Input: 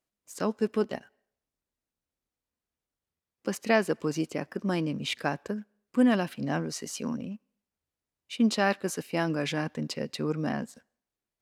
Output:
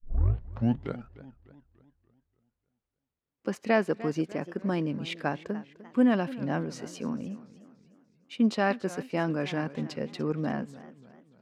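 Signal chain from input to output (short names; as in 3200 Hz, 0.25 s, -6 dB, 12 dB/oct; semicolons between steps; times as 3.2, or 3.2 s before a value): tape start at the beginning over 1.22 s; LPF 2200 Hz 6 dB/oct; warbling echo 0.295 s, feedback 46%, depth 175 cents, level -17 dB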